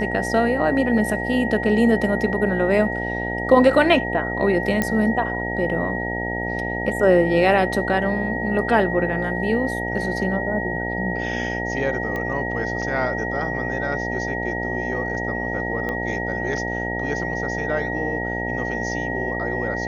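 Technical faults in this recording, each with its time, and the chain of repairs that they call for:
buzz 60 Hz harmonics 15 -28 dBFS
whine 1.9 kHz -27 dBFS
4.82 s: pop -7 dBFS
12.16 s: pop -16 dBFS
15.89 s: pop -15 dBFS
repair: de-click; de-hum 60 Hz, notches 15; band-stop 1.9 kHz, Q 30

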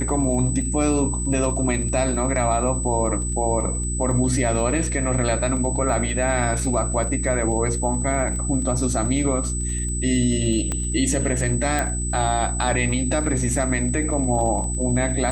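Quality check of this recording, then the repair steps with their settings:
crackle 28 per s -31 dBFS
hum 60 Hz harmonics 6 -26 dBFS
whine 8 kHz -28 dBFS
10.72 s: pop -12 dBFS
11.79 s: pop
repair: de-click; band-stop 8 kHz, Q 30; de-hum 60 Hz, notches 6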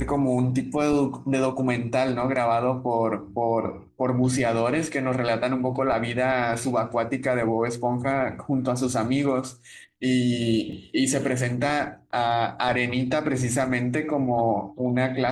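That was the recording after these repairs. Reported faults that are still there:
10.72 s: pop

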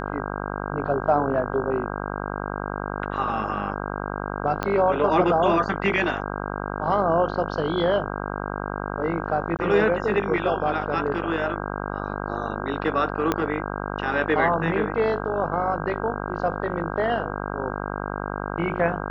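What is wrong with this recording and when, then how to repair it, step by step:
buzz 50 Hz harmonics 32 -30 dBFS
4.63 s: pop -11 dBFS
9.57–9.59 s: dropout 18 ms
13.32 s: pop -8 dBFS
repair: de-click; de-hum 50 Hz, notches 32; interpolate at 9.57 s, 18 ms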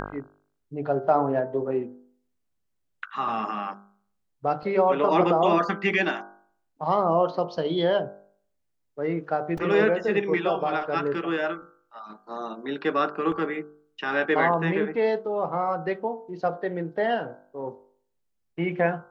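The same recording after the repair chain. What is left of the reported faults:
4.63 s: pop
13.32 s: pop

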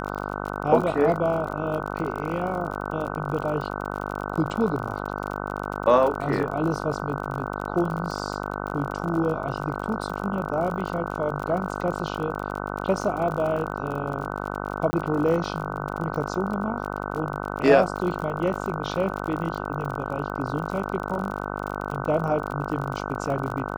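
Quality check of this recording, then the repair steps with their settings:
buzz 50 Hz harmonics 30 -31 dBFS
crackle 44 per s -31 dBFS
14.91–14.93 s: dropout 20 ms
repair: de-click; de-hum 50 Hz, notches 30; interpolate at 14.91 s, 20 ms

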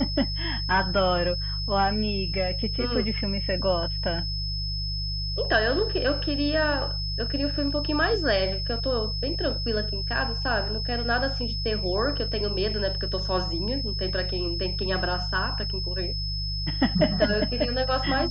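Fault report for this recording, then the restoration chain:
hum 50 Hz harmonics 3 -31 dBFS
whine 5.2 kHz -31 dBFS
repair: band-stop 5.2 kHz, Q 30; de-hum 50 Hz, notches 3

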